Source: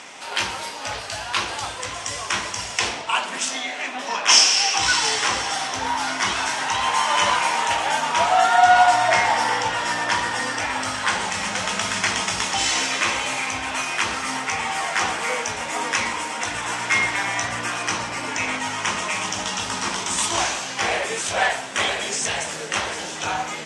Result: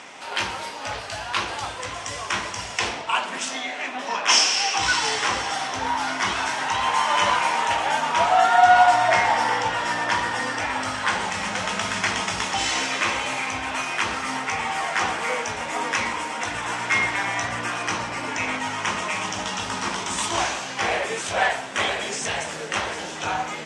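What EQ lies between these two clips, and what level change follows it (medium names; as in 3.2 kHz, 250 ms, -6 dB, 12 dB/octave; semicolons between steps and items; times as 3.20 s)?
treble shelf 4.1 kHz -7 dB; 0.0 dB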